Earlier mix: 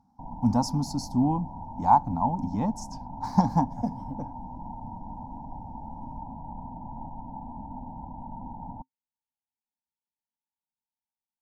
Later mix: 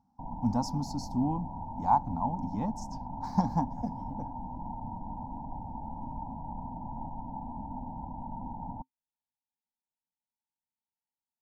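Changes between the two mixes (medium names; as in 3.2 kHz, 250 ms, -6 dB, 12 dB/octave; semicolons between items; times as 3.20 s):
speech -5.5 dB; master: add peaking EQ 10 kHz -7.5 dB 0.4 oct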